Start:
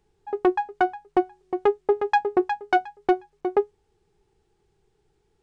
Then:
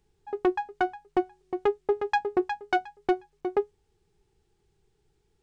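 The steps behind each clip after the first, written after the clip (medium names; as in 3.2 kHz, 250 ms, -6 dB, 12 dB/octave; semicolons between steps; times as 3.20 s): peaking EQ 710 Hz -5.5 dB 2.9 oct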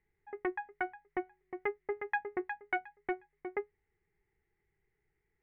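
four-pole ladder low-pass 2.1 kHz, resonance 85%; trim +1 dB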